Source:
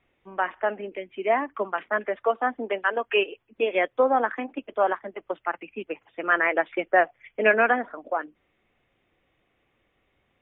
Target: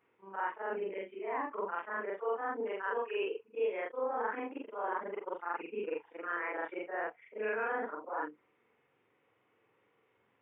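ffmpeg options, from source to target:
-af "afftfilt=real='re':imag='-im':win_size=4096:overlap=0.75,areverse,acompressor=threshold=0.0126:ratio=4,areverse,highpass=f=110:w=0.5412,highpass=f=110:w=1.3066,equalizer=f=170:t=q:w=4:g=-4,equalizer=f=450:t=q:w=4:g=9,equalizer=f=660:t=q:w=4:g=-5,equalizer=f=950:t=q:w=4:g=9,equalizer=f=1400:t=q:w=4:g=4,lowpass=f=3000:w=0.5412,lowpass=f=3000:w=1.3066"

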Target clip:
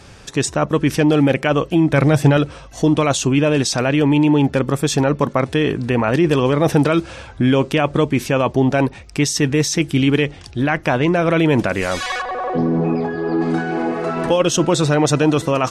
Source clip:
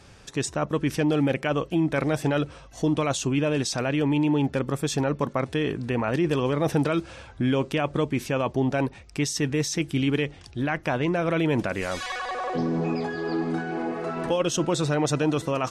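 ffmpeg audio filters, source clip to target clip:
-filter_complex "[0:a]asettb=1/sr,asplit=3[s0][s1][s2];[s0]atrim=end=1.934[s3];[s1]atrim=start=1.93:end=2.37,asetpts=PTS-STARTPTS,afade=t=in:d=0.004:c=qsin,afade=t=out:st=0.436:d=0.004:c=qsin,equalizer=f=120:w=1.3:g=8[s4];[s2]atrim=start=2.366[s5];[s3][s4]acrossfade=d=0.004:c1=hsin:c2=qsin[s6];[s6][s5]acrossfade=d=0.004:c1=qsin:c2=hsin,asplit=3[s7][s8][s9];[s7]afade=t=out:st=12.21:d=0.02[s10];[s8]lowpass=f=1100:p=1,afade=t=in:st=12.21:d=0.02,afade=t=out:st=13.4:d=0.02[s11];[s9]afade=t=in:st=13.4:d=0.02[s12];[s10][s11][s12]amix=inputs=3:normalize=0,volume=2.66"

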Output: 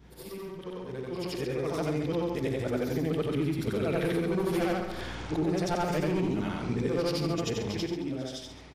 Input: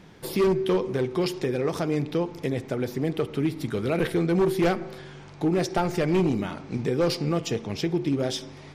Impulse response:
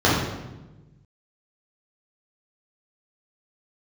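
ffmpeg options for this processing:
-filter_complex "[0:a]afftfilt=real='re':imag='-im':win_size=8192:overlap=0.75,aeval=exprs='val(0)+0.00224*(sin(2*PI*60*n/s)+sin(2*PI*2*60*n/s)/2+sin(2*PI*3*60*n/s)/3+sin(2*PI*4*60*n/s)/4+sin(2*PI*5*60*n/s)/5)':c=same,acompressor=threshold=0.0112:ratio=4,asplit=2[s0][s1];[s1]aecho=0:1:136:0.299[s2];[s0][s2]amix=inputs=2:normalize=0,dynaudnorm=f=420:g=7:m=4.73,volume=0.75"

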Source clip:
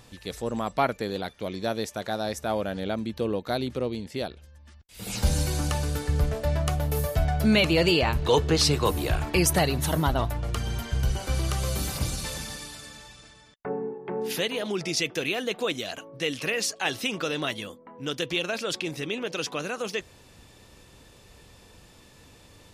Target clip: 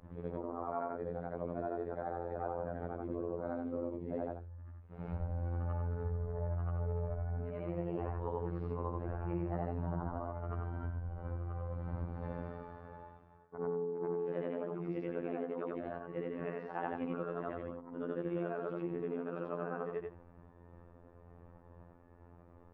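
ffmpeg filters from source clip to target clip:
-af "afftfilt=real='re':imag='-im':win_size=8192:overlap=0.75,lowpass=f=1300:w=0.5412,lowpass=f=1300:w=1.3066,agate=range=0.0224:threshold=0.00178:ratio=3:detection=peak,acompressor=threshold=0.0141:ratio=16,afftfilt=real='hypot(re,im)*cos(PI*b)':imag='0':win_size=2048:overlap=0.75,volume=2"

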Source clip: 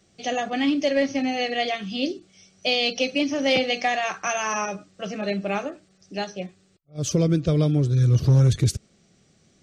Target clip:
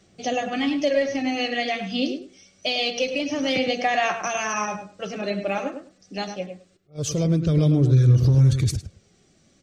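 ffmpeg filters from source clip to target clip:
-filter_complex "[0:a]alimiter=limit=0.178:level=0:latency=1:release=103,aphaser=in_gain=1:out_gain=1:delay=4.1:decay=0.38:speed=0.25:type=sinusoidal,asplit=2[s0][s1];[s1]adelay=104,lowpass=f=2000:p=1,volume=0.447,asplit=2[s2][s3];[s3]adelay=104,lowpass=f=2000:p=1,volume=0.16,asplit=2[s4][s5];[s5]adelay=104,lowpass=f=2000:p=1,volume=0.16[s6];[s2][s4][s6]amix=inputs=3:normalize=0[s7];[s0][s7]amix=inputs=2:normalize=0"

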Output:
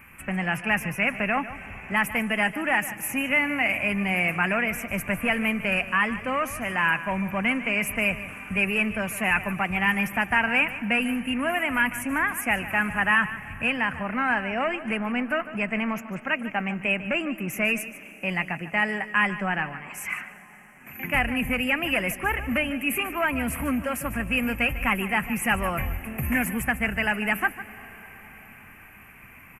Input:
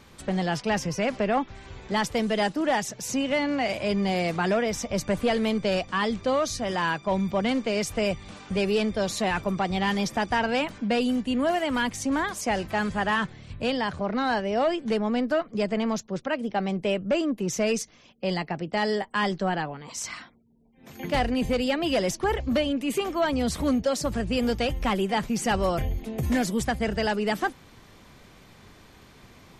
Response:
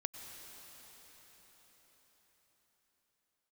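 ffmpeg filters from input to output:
-filter_complex "[0:a]firequalizer=gain_entry='entry(240,0);entry(420,-8);entry(670,-2);entry(1300,6);entry(2600,14);entry(3700,-26);entry(11000,14)':delay=0.05:min_phase=1,asplit=2[s0][s1];[1:a]atrim=start_sample=2205,adelay=149[s2];[s1][s2]afir=irnorm=-1:irlink=0,volume=0.251[s3];[s0][s3]amix=inputs=2:normalize=0,volume=0.841"

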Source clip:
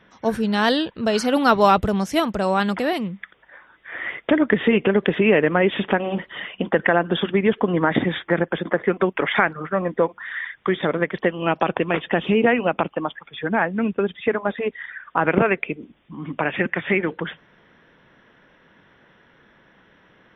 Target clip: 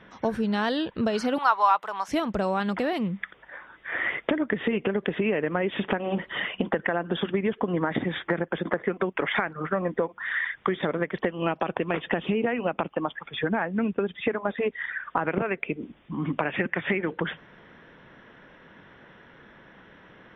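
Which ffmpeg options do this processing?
-filter_complex "[0:a]highshelf=f=5800:g=-10.5,acompressor=threshold=0.0447:ratio=6,asettb=1/sr,asplit=3[s0][s1][s2];[s0]atrim=end=1.384[s3];[s1]atrim=start=1.38:end=2.08,asetpts=PTS-STARTPTS,afade=t=in:d=0.004:c=qsin,afade=t=out:st=0.696:d=0.004:c=qsin,highpass=f=980:t=q:w=3.5[s4];[s2]atrim=start=2.076[s5];[s3][s4]acrossfade=d=0.004:c1=hsin:c2=qsin[s6];[s6][s5]acrossfade=d=0.004:c1=qsin:c2=hsin,volume=1.58"

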